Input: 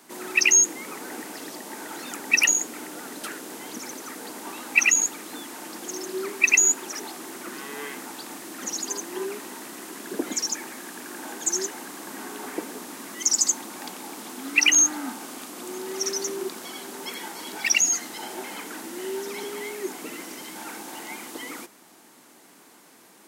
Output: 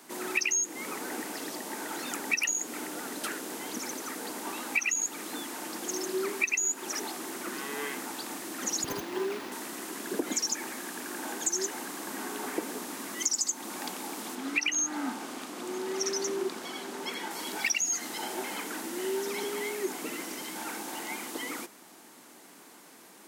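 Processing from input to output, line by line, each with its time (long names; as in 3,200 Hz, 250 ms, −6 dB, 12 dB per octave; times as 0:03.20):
0:08.84–0:09.52: windowed peak hold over 5 samples
0:14.35–0:17.31: high-shelf EQ 8,000 Hz −11 dB
whole clip: high-pass filter 120 Hz; downward compressor 10 to 1, threshold −25 dBFS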